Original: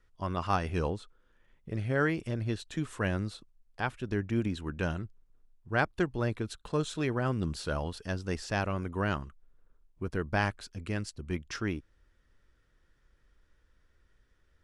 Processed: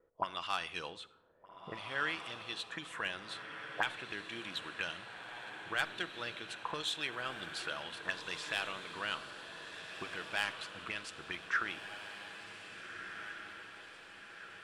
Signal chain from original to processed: auto-wah 480–3500 Hz, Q 3.3, up, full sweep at -30 dBFS; saturation -31 dBFS, distortion -19 dB; FFT filter 1.3 kHz 0 dB, 5.1 kHz -6 dB, 9.2 kHz +4 dB; on a send: echo that smears into a reverb 1652 ms, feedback 57%, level -8 dB; on the sum: simulated room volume 3100 m³, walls furnished, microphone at 0.68 m; trim +13.5 dB

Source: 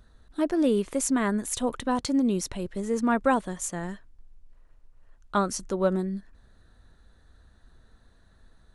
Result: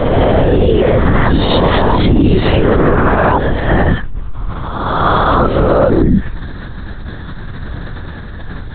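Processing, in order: reverse spectral sustain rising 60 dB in 1.16 s; compression 6:1, threshold -32 dBFS, peak gain reduction 16 dB; transient shaper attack -11 dB, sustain +1 dB; LPC vocoder at 8 kHz whisper; loudness maximiser +30 dB; trim -1 dB

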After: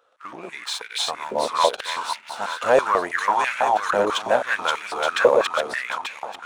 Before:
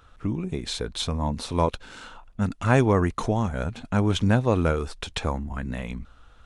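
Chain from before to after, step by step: backward echo that repeats 443 ms, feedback 49%, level -0.5 dB; waveshaping leveller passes 2; step-sequenced high-pass 6.1 Hz 520–2200 Hz; trim -5 dB

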